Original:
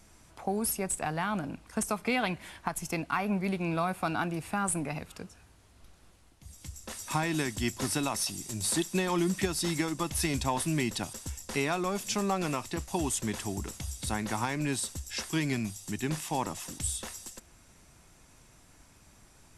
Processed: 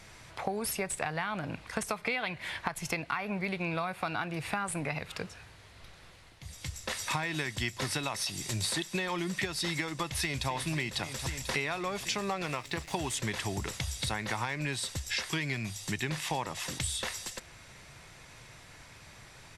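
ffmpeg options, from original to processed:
ffmpeg -i in.wav -filter_complex "[0:a]asplit=2[link_01][link_02];[link_02]afade=type=in:start_time=10.07:duration=0.01,afade=type=out:start_time=10.48:duration=0.01,aecho=0:1:260|520|780|1040|1300|1560|1820|2080|2340|2600|2860|3120:0.237137|0.201567|0.171332|0.145632|0.123787|0.105219|0.0894362|0.0760208|0.0646177|0.054925|0.0466863|0.0396833[link_03];[link_01][link_03]amix=inputs=2:normalize=0,asettb=1/sr,asplit=3[link_04][link_05][link_06];[link_04]atrim=end=12.464[link_07];[link_05]atrim=start=12.46:end=13.15,asetpts=PTS-STARTPTS,afade=type=in:duration=0.004:curve=qsin,afade=type=out:start_time=0.686:duration=0.004:curve=qsin,aeval=exprs='sgn(val(0))*max(abs(val(0))-0.00282,0)':channel_layout=same[link_08];[link_06]atrim=start=13.146[link_09];[link_07][link_08]acrossfade=duration=0.004:curve1=hsin:curve2=qsin[link_10];[link_10][link_09]acrossfade=duration=0.004:curve1=qsin:curve2=hsin,equalizer=frequency=125:width_type=o:width=1:gain=9,equalizer=frequency=250:width_type=o:width=1:gain=-3,equalizer=frequency=500:width_type=o:width=1:gain=7,equalizer=frequency=1000:width_type=o:width=1:gain=4,equalizer=frequency=2000:width_type=o:width=1:gain=11,equalizer=frequency=4000:width_type=o:width=1:gain=9,acompressor=threshold=-30dB:ratio=6" out.wav

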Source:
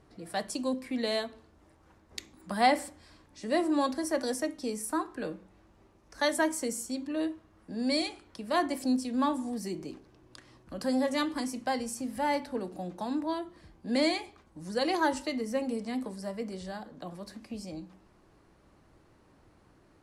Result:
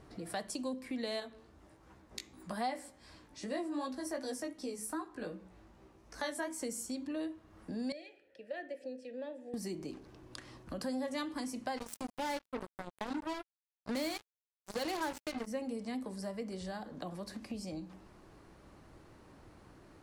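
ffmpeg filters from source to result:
ffmpeg -i in.wav -filter_complex "[0:a]asettb=1/sr,asplit=3[link_01][link_02][link_03];[link_01]atrim=end=1.204[link_04];[link_02]atrim=start=1.2:end=6.6,asetpts=PTS-STARTPTS,afade=type=in:duration=0.004:curve=qsin,afade=type=out:start_time=5.396:duration=0.004:curve=qsin,flanger=delay=15:depth=3.4:speed=2.6[link_05];[link_03]atrim=start=6.596[link_06];[link_04][link_05]acrossfade=duration=0.004:curve1=hsin:curve2=qsin[link_07];[link_07][link_06]acrossfade=duration=0.004:curve1=qsin:curve2=hsin,asettb=1/sr,asplit=3[link_08][link_09][link_10];[link_08]atrim=end=7.924[link_11];[link_09]atrim=start=7.92:end=9.54,asetpts=PTS-STARTPTS,afade=type=in:duration=0.004:curve=qsin,afade=type=out:start_time=1.616:duration=0.004:curve=qsin,asplit=3[link_12][link_13][link_14];[link_12]bandpass=frequency=530:width_type=q:width=8,volume=0dB[link_15];[link_13]bandpass=frequency=1840:width_type=q:width=8,volume=-6dB[link_16];[link_14]bandpass=frequency=2480:width_type=q:width=8,volume=-9dB[link_17];[link_15][link_16][link_17]amix=inputs=3:normalize=0[link_18];[link_10]atrim=start=9.536[link_19];[link_11][link_18]acrossfade=duration=0.004:curve1=hsin:curve2=qsin[link_20];[link_20][link_19]acrossfade=duration=0.004:curve1=qsin:curve2=hsin,asplit=3[link_21][link_22][link_23];[link_21]afade=type=out:start_time=11.76:duration=0.02[link_24];[link_22]acrusher=bits=4:mix=0:aa=0.5,afade=type=in:start_time=11.76:duration=0.02,afade=type=out:start_time=15.46:duration=0.02[link_25];[link_23]afade=type=in:start_time=15.46:duration=0.02[link_26];[link_24][link_25][link_26]amix=inputs=3:normalize=0,acompressor=threshold=-45dB:ratio=2.5,volume=4dB" out.wav

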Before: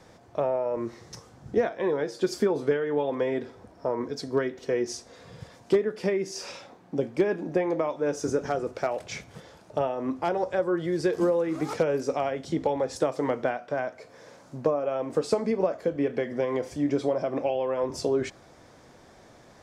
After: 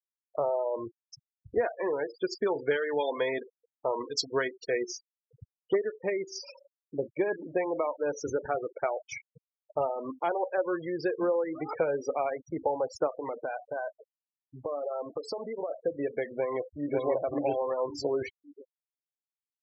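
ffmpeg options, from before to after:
ffmpeg -i in.wav -filter_complex "[0:a]asettb=1/sr,asplit=3[link_01][link_02][link_03];[link_01]atrim=end=2.474[link_04];[link_02]atrim=start=2.47:end=4.78,asetpts=PTS-STARTPTS,afade=type=in:duration=0.004:curve=qsin,afade=type=out:start_time=2.306:duration=0.004:curve=qsin,highshelf=frequency=2200:gain=11.5[link_05];[link_03]atrim=start=4.776[link_06];[link_04][link_05]acrossfade=duration=0.004:curve1=hsin:curve2=qsin[link_07];[link_07][link_06]acrossfade=duration=0.004:curve1=qsin:curve2=hsin,asettb=1/sr,asplit=3[link_08][link_09][link_10];[link_08]atrim=end=13.074[link_11];[link_09]atrim=start=13.07:end=15.71,asetpts=PTS-STARTPTS,afade=type=in:duration=0.004:curve=qsin,afade=type=out:start_time=2.636:duration=0.004:curve=qsin,acompressor=threshold=-27dB:ratio=4:attack=3.2:release=140:knee=1:detection=peak[link_12];[link_10]atrim=start=15.706[link_13];[link_11][link_12]acrossfade=duration=0.004:curve1=hsin:curve2=qsin[link_14];[link_14][link_13]acrossfade=duration=0.004:curve1=qsin:curve2=hsin,asplit=2[link_15][link_16];[link_16]afade=type=in:start_time=16.32:duration=0.01,afade=type=out:start_time=17:duration=0.01,aecho=0:1:550|1100|1650|2200|2750:0.794328|0.317731|0.127093|0.050837|0.0203348[link_17];[link_15][link_17]amix=inputs=2:normalize=0,equalizer=frequency=200:width_type=o:width=1.5:gain=-12,afftfilt=real='re*gte(hypot(re,im),0.0282)':imag='im*gte(hypot(re,im),0.0282)':win_size=1024:overlap=0.75" out.wav

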